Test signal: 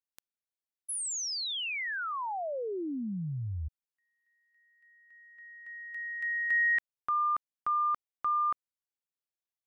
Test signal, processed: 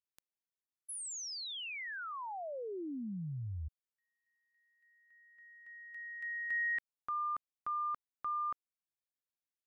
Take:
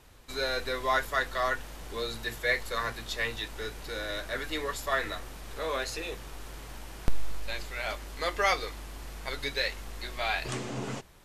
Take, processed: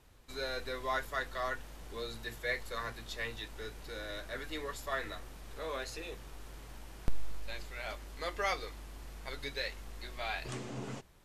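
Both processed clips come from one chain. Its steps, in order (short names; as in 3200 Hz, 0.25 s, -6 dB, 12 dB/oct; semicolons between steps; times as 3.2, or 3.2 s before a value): low shelf 430 Hz +3 dB; gain -8 dB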